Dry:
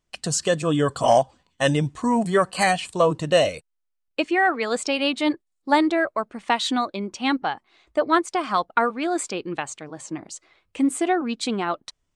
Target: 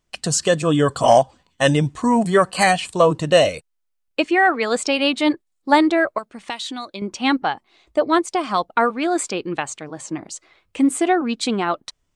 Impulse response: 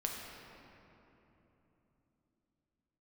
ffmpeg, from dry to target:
-filter_complex "[0:a]asettb=1/sr,asplit=3[s0][s1][s2];[s0]atrim=end=6.184[s3];[s1]atrim=start=6.18:end=7.02,asetpts=PTS-STARTPTS,afade=t=in:d=0.004:c=qsin,afade=t=out:st=0.836:d=0.004:c=qsin,acrossover=split=2600|6800[s4][s5][s6];[s4]acompressor=threshold=0.0178:ratio=4[s7];[s5]acompressor=threshold=0.0178:ratio=4[s8];[s6]acompressor=threshold=0.00501:ratio=4[s9];[s7][s8][s9]amix=inputs=3:normalize=0[s10];[s2]atrim=start=7.016[s11];[s3][s10]acrossfade=d=0.004:c1=hsin:c2=qsin[s12];[s12][s11]acrossfade=d=0.004:c1=qsin:c2=hsin,asettb=1/sr,asplit=3[s13][s14][s15];[s13]atrim=end=7.524[s16];[s14]atrim=start=7.52:end=8.79,asetpts=PTS-STARTPTS,afade=t=in:d=0.004:c=qsin,afade=t=out:st=1.266:d=0.004:c=qsin,equalizer=f=1500:w=1.2:g=-5[s17];[s15]atrim=start=8.786[s18];[s16][s17]acrossfade=d=0.004:c1=hsin:c2=qsin[s19];[s19][s18]acrossfade=d=0.004:c1=qsin:c2=hsin,volume=1.58"

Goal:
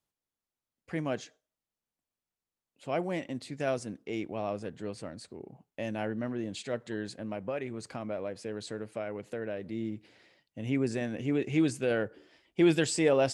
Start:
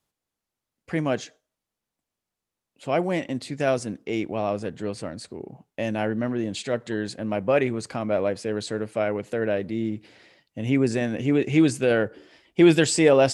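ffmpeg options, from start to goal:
-filter_complex "[0:a]asettb=1/sr,asplit=3[s0][s1][s2];[s0]atrim=end=7.074[s3];[s1]atrim=start=7.07:end=9.66,asetpts=PTS-STARTPTS,afade=t=in:d=0.004:c=qsin,afade=t=out:st=2.586:d=0.004:c=qsin,acompressor=threshold=0.0562:ratio=3[s4];[s2]atrim=start=9.656[s5];[s3][s4]acrossfade=d=0.004:c1=hsin:c2=qsin[s6];[s6][s5]acrossfade=d=0.004:c1=qsin:c2=hsin,volume=0.398"

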